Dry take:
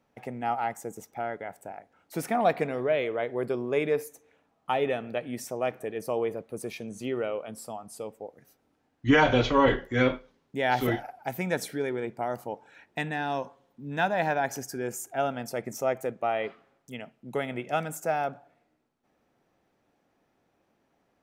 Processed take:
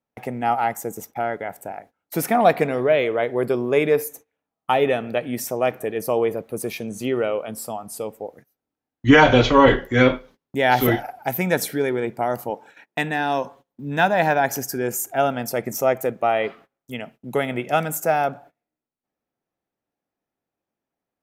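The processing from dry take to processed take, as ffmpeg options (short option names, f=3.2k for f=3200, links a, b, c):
-filter_complex "[0:a]asettb=1/sr,asplit=3[a][b][c];[a]atrim=end=12.504[d];[b]atrim=start=12.5:end=13.44,asetpts=PTS-STARTPTS,afade=t=in:d=0.004:c=qsin,afade=t=out:st=0.936:d=0.004:c=qsin,highpass=160[e];[c]atrim=start=13.436[f];[d][e]acrossfade=d=0.004:c1=hsin:c2=qsin[g];[g][f]acrossfade=d=0.004:c1=qsin:c2=hsin,agate=range=-23dB:threshold=-52dB:ratio=16:detection=peak,equalizer=f=13k:t=o:w=0.41:g=10,volume=8dB"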